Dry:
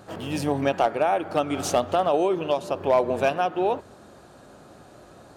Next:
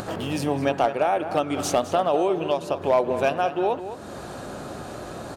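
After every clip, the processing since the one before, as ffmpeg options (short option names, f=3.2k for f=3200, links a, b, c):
-filter_complex "[0:a]acompressor=mode=upward:threshold=-23dB:ratio=2.5,asplit=2[a][b];[b]adelay=209.9,volume=-11dB,highshelf=f=4k:g=-4.72[c];[a][c]amix=inputs=2:normalize=0"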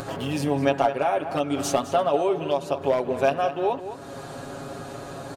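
-af "aecho=1:1:7.3:0.68,volume=-2.5dB"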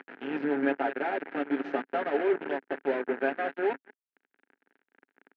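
-af "acrusher=bits=3:mix=0:aa=0.5,highpass=f=230:w=0.5412,highpass=f=230:w=1.3066,equalizer=f=270:t=q:w=4:g=5,equalizer=f=400:t=q:w=4:g=4,equalizer=f=610:t=q:w=4:g=-8,equalizer=f=1.1k:t=q:w=4:g=-10,equalizer=f=1.6k:t=q:w=4:g=8,lowpass=f=2.3k:w=0.5412,lowpass=f=2.3k:w=1.3066,volume=-5.5dB"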